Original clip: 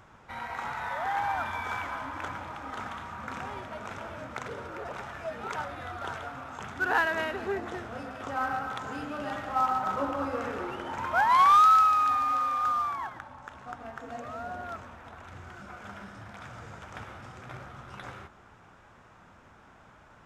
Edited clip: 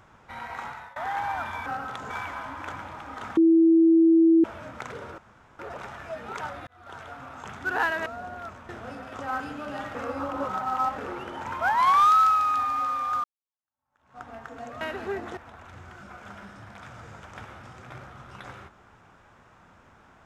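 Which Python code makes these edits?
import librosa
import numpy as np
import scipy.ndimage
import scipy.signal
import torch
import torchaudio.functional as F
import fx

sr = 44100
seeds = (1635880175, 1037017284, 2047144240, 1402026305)

y = fx.edit(x, sr, fx.fade_out_to(start_s=0.6, length_s=0.36, floor_db=-23.0),
    fx.bleep(start_s=2.93, length_s=1.07, hz=328.0, db=-14.0),
    fx.insert_room_tone(at_s=4.74, length_s=0.41),
    fx.fade_in_span(start_s=5.82, length_s=0.83, curve='qsin'),
    fx.swap(start_s=7.21, length_s=0.56, other_s=14.33, other_length_s=0.63),
    fx.move(start_s=8.48, length_s=0.44, to_s=1.66),
    fx.reverse_span(start_s=9.47, length_s=1.03),
    fx.fade_in_span(start_s=12.76, length_s=0.98, curve='exp'), tone=tone)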